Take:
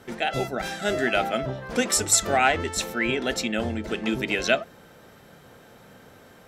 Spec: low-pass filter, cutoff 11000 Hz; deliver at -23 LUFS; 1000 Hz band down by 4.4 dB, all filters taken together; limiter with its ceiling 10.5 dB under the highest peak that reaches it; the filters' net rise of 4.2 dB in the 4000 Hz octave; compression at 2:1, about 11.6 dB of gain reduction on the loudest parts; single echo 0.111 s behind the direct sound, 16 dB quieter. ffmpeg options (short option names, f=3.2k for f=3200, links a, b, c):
-af "lowpass=11k,equalizer=f=1k:t=o:g=-7.5,equalizer=f=4k:t=o:g=6,acompressor=threshold=-36dB:ratio=2,alimiter=level_in=2.5dB:limit=-24dB:level=0:latency=1,volume=-2.5dB,aecho=1:1:111:0.158,volume=14dB"